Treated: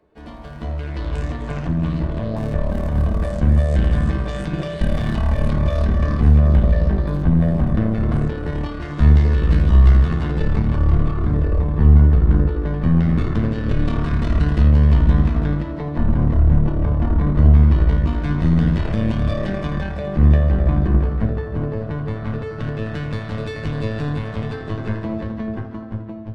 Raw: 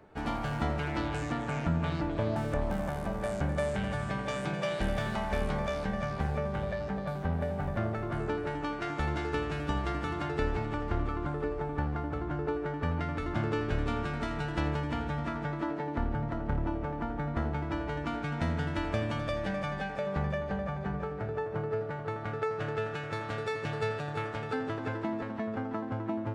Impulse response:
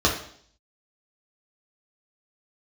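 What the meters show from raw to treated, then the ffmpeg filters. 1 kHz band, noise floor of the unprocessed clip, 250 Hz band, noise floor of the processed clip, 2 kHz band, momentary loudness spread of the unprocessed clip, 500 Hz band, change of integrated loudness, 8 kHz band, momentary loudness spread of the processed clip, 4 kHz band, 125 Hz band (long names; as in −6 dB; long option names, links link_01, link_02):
+2.5 dB, −38 dBFS, +12.5 dB, −30 dBFS, +3.5 dB, 3 LU, +5.5 dB, +14.5 dB, can't be measured, 13 LU, +5.0 dB, +17.5 dB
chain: -filter_complex "[0:a]dynaudnorm=framelen=250:gausssize=9:maxgain=11dB,alimiter=limit=-15.5dB:level=0:latency=1:release=73,asubboost=boost=7:cutoff=140,aeval=exprs='0.891*(cos(1*acos(clip(val(0)/0.891,-1,1)))-cos(1*PI/2))+0.316*(cos(4*acos(clip(val(0)/0.891,-1,1)))-cos(4*PI/2))':channel_layout=same,asplit=2[link_01][link_02];[1:a]atrim=start_sample=2205,lowpass=8500[link_03];[link_02][link_03]afir=irnorm=-1:irlink=0,volume=-19dB[link_04];[link_01][link_04]amix=inputs=2:normalize=0,volume=-7.5dB"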